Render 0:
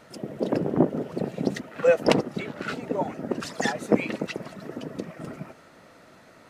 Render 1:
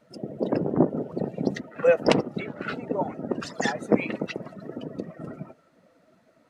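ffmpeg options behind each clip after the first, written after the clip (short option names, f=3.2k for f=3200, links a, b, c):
-af "afftdn=nr=14:nf=-42"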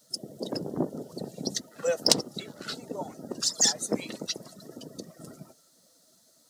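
-af "aexciter=amount=10.2:drive=8.9:freq=3.8k,volume=-8.5dB"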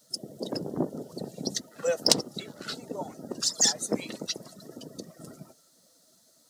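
-af anull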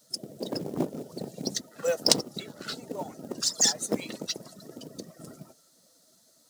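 -af "acrusher=bits=5:mode=log:mix=0:aa=0.000001"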